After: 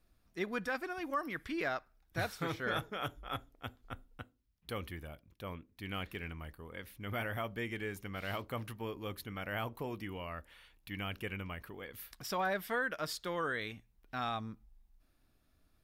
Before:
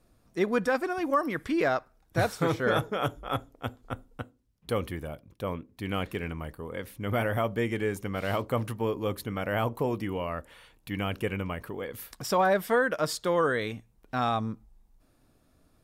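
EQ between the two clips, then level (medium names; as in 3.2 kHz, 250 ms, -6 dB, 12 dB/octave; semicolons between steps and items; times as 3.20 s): graphic EQ 125/250/500/1000/8000 Hz -7/-5/-8/-5/-7 dB; -3.5 dB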